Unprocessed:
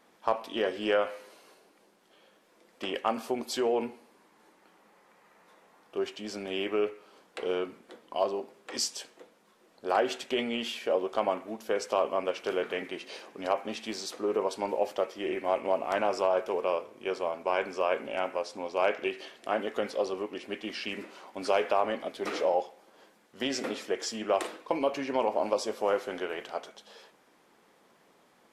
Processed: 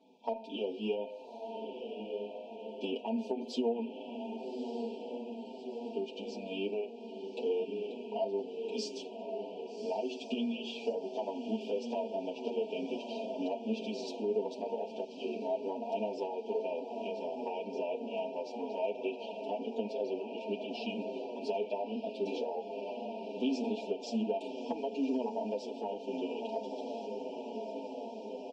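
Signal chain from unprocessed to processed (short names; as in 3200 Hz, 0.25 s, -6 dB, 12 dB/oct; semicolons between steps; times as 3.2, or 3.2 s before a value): brick-wall FIR band-stop 990–2300 Hz; air absorption 160 m; diffused feedback echo 1.196 s, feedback 66%, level -10.5 dB; compressor 2.5:1, threshold -35 dBFS, peak gain reduction 9.5 dB; resonant low shelf 170 Hz -11 dB, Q 3; comb 4.5 ms, depth 74%; endless flanger 7.4 ms -1.8 Hz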